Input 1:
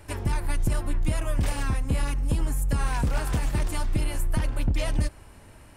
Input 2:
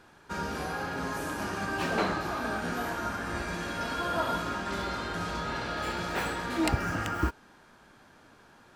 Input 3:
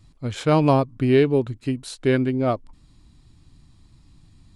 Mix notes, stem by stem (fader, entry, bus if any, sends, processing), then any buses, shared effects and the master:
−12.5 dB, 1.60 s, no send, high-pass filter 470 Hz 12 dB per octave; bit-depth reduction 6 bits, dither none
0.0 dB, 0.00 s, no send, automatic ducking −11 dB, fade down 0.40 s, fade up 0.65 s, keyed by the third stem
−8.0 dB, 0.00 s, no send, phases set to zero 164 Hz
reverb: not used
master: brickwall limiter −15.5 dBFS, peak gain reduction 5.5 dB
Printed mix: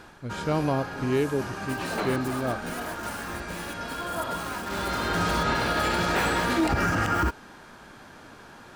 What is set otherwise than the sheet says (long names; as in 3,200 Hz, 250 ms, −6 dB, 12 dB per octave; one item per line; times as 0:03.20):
stem 1 −12.5 dB → −5.5 dB
stem 2 0.0 dB → +9.5 dB
stem 3: missing phases set to zero 164 Hz